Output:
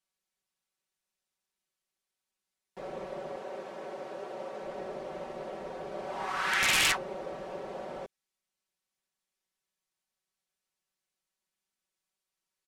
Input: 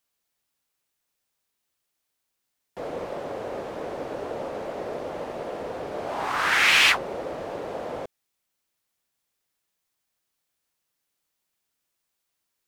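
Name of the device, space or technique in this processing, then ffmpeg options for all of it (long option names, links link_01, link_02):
overflowing digital effects unit: -filter_complex "[0:a]asettb=1/sr,asplit=3[link_01][link_02][link_03];[link_01]atrim=end=3.364[link_04];[link_02]atrim=start=3.36:end=4.63,asetpts=PTS-STARTPTS,afade=type=in:duration=0.004:curve=qsin,afade=type=out:start_time=1.266:duration=0.004:curve=qsin,highpass=frequency=280:poles=1[link_05];[link_03]atrim=start=4.626[link_06];[link_04][link_05]acrossfade=duration=0.004:curve1=hsin:curve2=qsin[link_07];[link_07][link_06]acrossfade=duration=0.004:curve1=qsin:curve2=hsin,aecho=1:1:5.3:0.85,aeval=exprs='(mod(2.51*val(0)+1,2)-1)/2.51':channel_layout=same,lowpass=11000,volume=-9dB"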